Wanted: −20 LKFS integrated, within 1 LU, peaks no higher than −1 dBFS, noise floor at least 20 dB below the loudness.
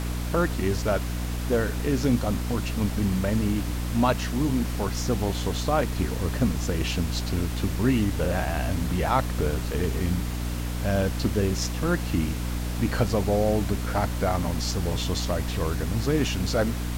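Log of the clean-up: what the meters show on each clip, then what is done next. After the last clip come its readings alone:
mains hum 60 Hz; hum harmonics up to 300 Hz; level of the hum −27 dBFS; background noise floor −30 dBFS; target noise floor −47 dBFS; integrated loudness −26.5 LKFS; sample peak −9.5 dBFS; target loudness −20.0 LKFS
→ mains-hum notches 60/120/180/240/300 Hz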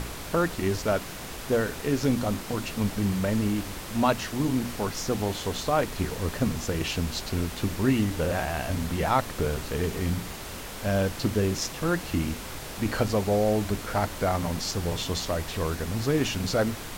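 mains hum none found; background noise floor −38 dBFS; target noise floor −48 dBFS
→ noise reduction from a noise print 10 dB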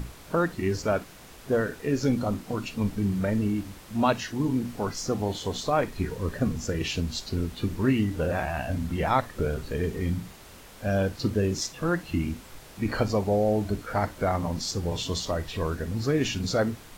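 background noise floor −48 dBFS; integrated loudness −28.0 LKFS; sample peak −10.0 dBFS; target loudness −20.0 LKFS
→ level +8 dB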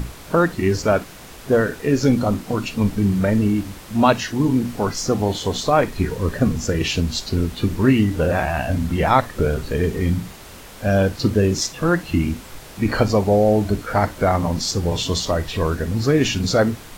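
integrated loudness −20.0 LKFS; sample peak −2.0 dBFS; background noise floor −40 dBFS

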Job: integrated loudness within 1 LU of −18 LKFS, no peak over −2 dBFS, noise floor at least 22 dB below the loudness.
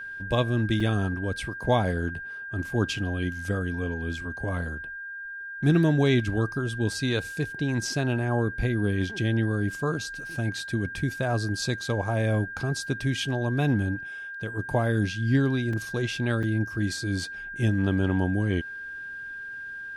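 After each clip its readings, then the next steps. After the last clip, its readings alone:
number of dropouts 3; longest dropout 3.8 ms; interfering tone 1,600 Hz; level of the tone −35 dBFS; integrated loudness −27.5 LKFS; sample peak −10.5 dBFS; target loudness −18.0 LKFS
→ repair the gap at 0:00.80/0:15.73/0:16.43, 3.8 ms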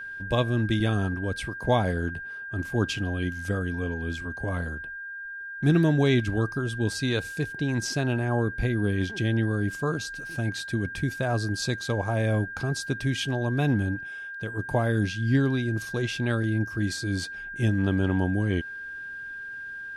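number of dropouts 0; interfering tone 1,600 Hz; level of the tone −35 dBFS
→ notch filter 1,600 Hz, Q 30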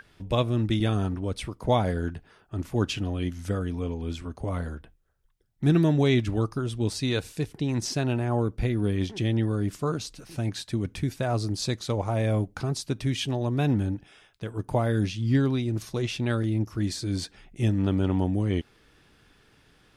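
interfering tone none found; integrated loudness −27.5 LKFS; sample peak −10.5 dBFS; target loudness −18.0 LKFS
→ level +9.5 dB
brickwall limiter −2 dBFS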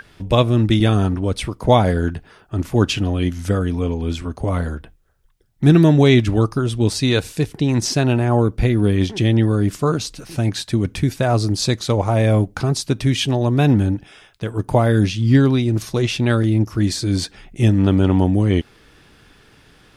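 integrated loudness −18.0 LKFS; sample peak −2.0 dBFS; background noise floor −51 dBFS

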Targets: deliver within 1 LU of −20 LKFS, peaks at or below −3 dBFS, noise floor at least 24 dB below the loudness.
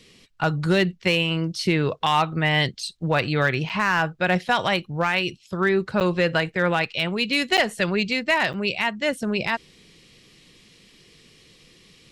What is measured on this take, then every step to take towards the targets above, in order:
share of clipped samples 0.2%; peaks flattened at −11.5 dBFS; number of dropouts 4; longest dropout 7.9 ms; integrated loudness −22.5 LKFS; sample peak −11.5 dBFS; target loudness −20.0 LKFS
→ clipped peaks rebuilt −11.5 dBFS
repair the gap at 0:03.69/0:06.00/0:07.57/0:08.53, 7.9 ms
level +2.5 dB

